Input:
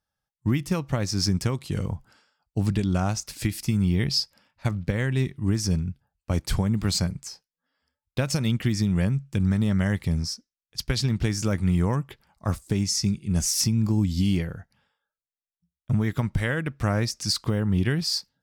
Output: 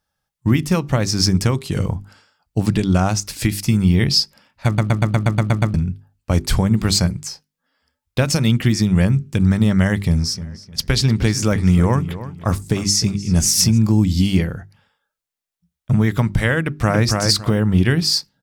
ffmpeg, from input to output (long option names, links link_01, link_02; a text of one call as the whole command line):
ffmpeg -i in.wav -filter_complex "[0:a]asplit=3[link_01][link_02][link_03];[link_01]afade=type=out:start_time=10.33:duration=0.02[link_04];[link_02]asplit=2[link_05][link_06];[link_06]adelay=306,lowpass=frequency=3200:poles=1,volume=-13.5dB,asplit=2[link_07][link_08];[link_08]adelay=306,lowpass=frequency=3200:poles=1,volume=0.29,asplit=2[link_09][link_10];[link_10]adelay=306,lowpass=frequency=3200:poles=1,volume=0.29[link_11];[link_05][link_07][link_09][link_11]amix=inputs=4:normalize=0,afade=type=in:start_time=10.33:duration=0.02,afade=type=out:start_time=13.77:duration=0.02[link_12];[link_03]afade=type=in:start_time=13.77:duration=0.02[link_13];[link_04][link_12][link_13]amix=inputs=3:normalize=0,asplit=2[link_14][link_15];[link_15]afade=type=in:start_time=16.6:duration=0.01,afade=type=out:start_time=17.02:duration=0.01,aecho=0:1:280|560|840:0.707946|0.141589|0.0283178[link_16];[link_14][link_16]amix=inputs=2:normalize=0,asplit=10[link_17][link_18][link_19][link_20][link_21][link_22][link_23][link_24][link_25][link_26];[link_17]atrim=end=4.782[link_27];[link_18]atrim=start=4.658:end=4.782[link_28];[link_19]atrim=start=4.658:end=4.782[link_29];[link_20]atrim=start=4.658:end=4.782[link_30];[link_21]atrim=start=4.658:end=4.782[link_31];[link_22]atrim=start=4.658:end=4.782[link_32];[link_23]atrim=start=4.658:end=4.782[link_33];[link_24]atrim=start=4.658:end=4.782[link_34];[link_25]atrim=start=4.658:end=4.782[link_35];[link_26]atrim=start=5.738[link_36];[link_27][link_28]acrossfade=duration=0.004:curve1=hsin:curve2=hsin[link_37];[link_37][link_29]acrossfade=duration=0.004:curve1=hsin:curve2=hsin[link_38];[link_38][link_30]acrossfade=duration=0.004:curve1=hsin:curve2=hsin[link_39];[link_39][link_31]acrossfade=duration=0.004:curve1=hsin:curve2=hsin[link_40];[link_40][link_32]acrossfade=duration=0.004:curve1=hsin:curve2=hsin[link_41];[link_41][link_33]acrossfade=duration=0.004:curve1=hsin:curve2=hsin[link_42];[link_42][link_34]acrossfade=duration=0.004:curve1=hsin:curve2=hsin[link_43];[link_43][link_35]acrossfade=duration=0.004:curve1=hsin:curve2=hsin[link_44];[link_44][link_36]acrossfade=duration=0.004:curve1=hsin:curve2=hsin,bandreject=frequency=50:width_type=h:width=6,bandreject=frequency=100:width_type=h:width=6,bandreject=frequency=150:width_type=h:width=6,bandreject=frequency=200:width_type=h:width=6,bandreject=frequency=250:width_type=h:width=6,bandreject=frequency=300:width_type=h:width=6,bandreject=frequency=350:width_type=h:width=6,bandreject=frequency=400:width_type=h:width=6,volume=8.5dB" out.wav